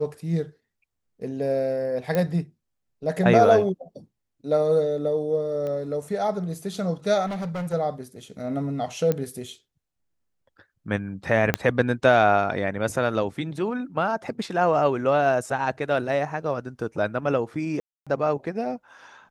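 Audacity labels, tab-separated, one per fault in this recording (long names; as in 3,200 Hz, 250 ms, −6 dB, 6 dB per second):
2.150000	2.150000	click −12 dBFS
5.670000	5.670000	click −22 dBFS
7.260000	7.740000	clipping −27 dBFS
9.120000	9.120000	click −12 dBFS
11.540000	11.540000	click −6 dBFS
17.800000	18.070000	drop-out 266 ms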